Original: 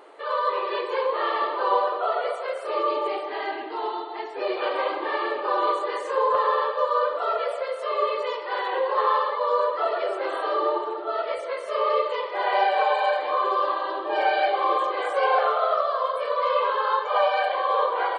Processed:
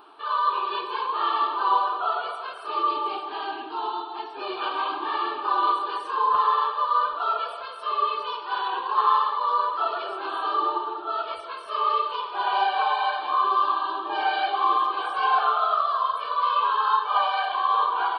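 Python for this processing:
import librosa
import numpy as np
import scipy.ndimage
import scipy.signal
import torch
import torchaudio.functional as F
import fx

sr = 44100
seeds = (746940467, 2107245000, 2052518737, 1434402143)

y = fx.fixed_phaser(x, sr, hz=2000.0, stages=6)
y = F.gain(torch.from_numpy(y), 3.0).numpy()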